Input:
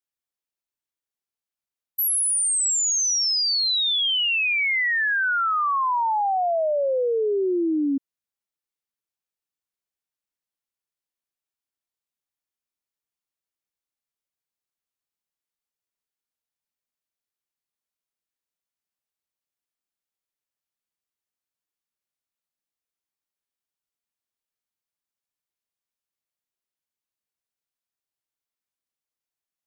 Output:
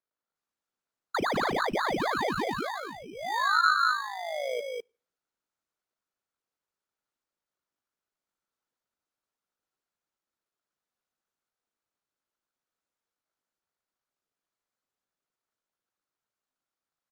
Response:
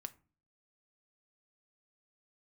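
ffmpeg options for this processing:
-filter_complex "[0:a]firequalizer=gain_entry='entry(120,0);entry(530,-19);entry(750,13);entry(1400,-24);entry(3100,-4)':delay=0.05:min_phase=1,asetrate=76440,aresample=44100,aecho=1:1:200:0.631,asplit=2[a][b];[1:a]atrim=start_sample=2205,highshelf=f=8.2k:g=9[c];[b][c]afir=irnorm=-1:irlink=0,volume=-5.5dB[d];[a][d]amix=inputs=2:normalize=0,tremolo=f=53:d=0.571,acrusher=samples=16:mix=1:aa=0.000001,acrossover=split=5400[e][f];[f]acompressor=threshold=-31dB:ratio=4:attack=1:release=60[g];[e][g]amix=inputs=2:normalize=0,acrossover=split=170 5400:gain=0.158 1 0.251[h][i][j];[h][i][j]amix=inputs=3:normalize=0,acompressor=threshold=-27dB:ratio=2" -ar 48000 -c:a libopus -b:a 48k

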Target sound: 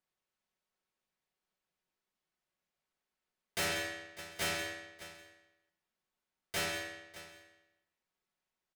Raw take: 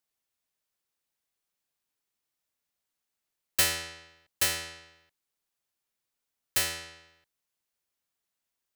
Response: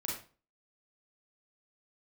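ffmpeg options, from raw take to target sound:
-filter_complex "[0:a]aemphasis=mode=reproduction:type=75kf,aecho=1:1:5.4:0.49,asplit=3[a][b][c];[b]asetrate=52444,aresample=44100,atempo=0.840896,volume=-5dB[d];[c]asetrate=55563,aresample=44100,atempo=0.793701,volume=-17dB[e];[a][d][e]amix=inputs=3:normalize=0,aecho=1:1:598:0.119,asplit=2[f][g];[1:a]atrim=start_sample=2205,adelay=130[h];[g][h]afir=irnorm=-1:irlink=0,volume=-13.5dB[i];[f][i]amix=inputs=2:normalize=0,volume=30.5dB,asoftclip=hard,volume=-30.5dB"

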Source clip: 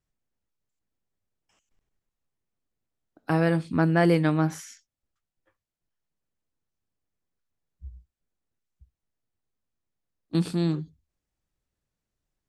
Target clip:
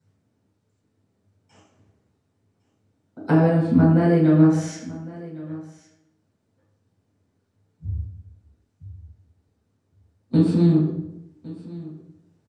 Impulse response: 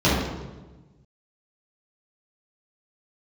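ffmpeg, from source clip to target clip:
-filter_complex "[0:a]acompressor=threshold=-35dB:ratio=16,aecho=1:1:1108:0.112[a];[1:a]atrim=start_sample=2205,asetrate=66150,aresample=44100[b];[a][b]afir=irnorm=-1:irlink=0,volume=-3.5dB"

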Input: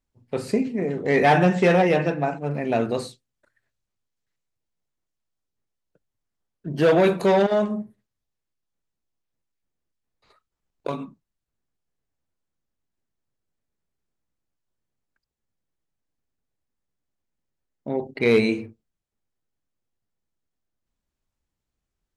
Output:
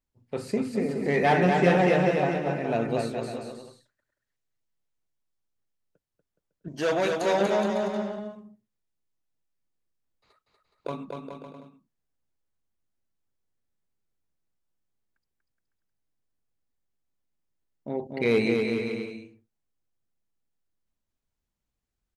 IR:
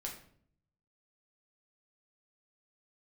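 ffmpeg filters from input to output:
-filter_complex "[0:a]asettb=1/sr,asplit=3[a][b][c];[a]atrim=end=6.684[d];[b]atrim=start=6.68:end=7.41,asetpts=PTS-STARTPTS,afade=t=in:d=0.004:c=qsin,afade=t=out:st=0.726:d=0.004:c=qsin,equalizer=f=160:t=o:w=0.67:g=-12,equalizer=f=400:t=o:w=0.67:g=-6,equalizer=f=6.3k:t=o:w=0.67:g=10[e];[c]atrim=start=7.406[f];[d][e]acrossfade=d=0.004:c1=hsin:c2=qsin[g];[g][f]acrossfade=d=0.004:c1=qsin:c2=hsin,asplit=2[h][i];[i]aecho=0:1:240|420|555|656.2|732.2:0.631|0.398|0.251|0.158|0.1[j];[h][j]amix=inputs=2:normalize=0,volume=-5dB"

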